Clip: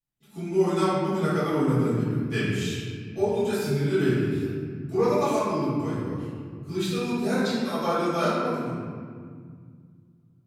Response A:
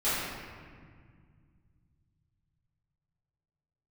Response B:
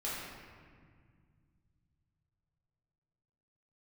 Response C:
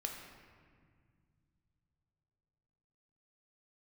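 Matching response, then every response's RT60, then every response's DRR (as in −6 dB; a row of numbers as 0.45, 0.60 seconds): A; 1.9, 1.9, 2.0 seconds; −15.0, −8.5, 1.5 decibels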